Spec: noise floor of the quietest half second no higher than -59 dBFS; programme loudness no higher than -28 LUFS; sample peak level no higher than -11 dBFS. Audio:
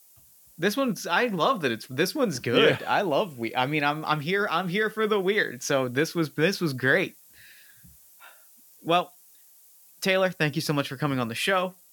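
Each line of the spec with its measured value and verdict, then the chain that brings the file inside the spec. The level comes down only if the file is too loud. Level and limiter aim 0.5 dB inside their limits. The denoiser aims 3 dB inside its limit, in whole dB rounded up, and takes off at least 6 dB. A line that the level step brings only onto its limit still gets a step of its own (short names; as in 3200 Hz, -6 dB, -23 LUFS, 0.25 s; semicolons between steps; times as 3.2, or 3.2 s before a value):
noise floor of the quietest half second -56 dBFS: fail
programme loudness -25.5 LUFS: fail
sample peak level -7.5 dBFS: fail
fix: denoiser 6 dB, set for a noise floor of -56 dBFS; gain -3 dB; limiter -11.5 dBFS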